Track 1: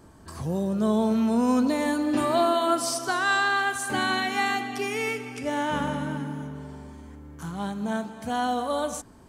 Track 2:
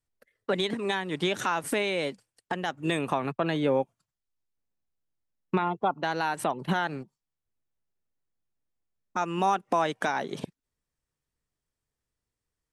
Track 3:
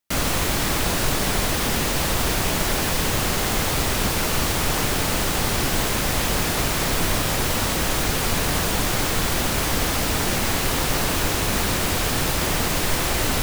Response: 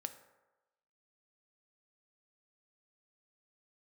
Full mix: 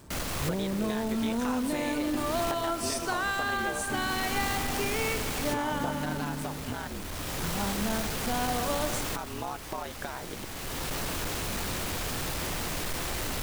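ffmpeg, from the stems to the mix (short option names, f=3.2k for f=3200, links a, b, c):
-filter_complex "[0:a]acompressor=threshold=-25dB:ratio=6,volume=-2dB[a];[1:a]acompressor=mode=upward:threshold=-29dB:ratio=2.5,aeval=exprs='val(0)*sin(2*PI*68*n/s)':c=same,acompressor=threshold=-35dB:ratio=2.5,volume=-1dB,asplit=2[b][c];[2:a]asoftclip=type=tanh:threshold=-21dB,volume=-7dB[d];[c]apad=whole_len=592141[e];[d][e]sidechaincompress=threshold=-42dB:ratio=8:attack=30:release=733[f];[a][b][f]amix=inputs=3:normalize=0"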